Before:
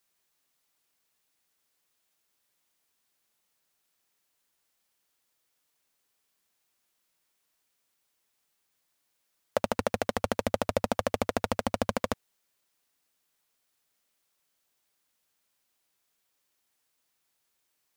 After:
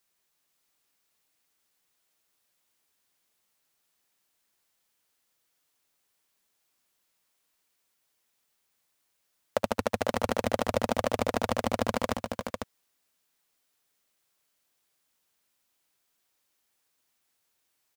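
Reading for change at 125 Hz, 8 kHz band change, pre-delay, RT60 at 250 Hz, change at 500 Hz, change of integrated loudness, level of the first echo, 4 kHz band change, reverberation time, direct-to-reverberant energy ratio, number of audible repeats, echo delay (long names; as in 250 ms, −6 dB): +1.0 dB, +1.0 dB, no reverb audible, no reverb audible, +1.0 dB, +1.0 dB, −18.0 dB, +1.0 dB, no reverb audible, no reverb audible, 3, 66 ms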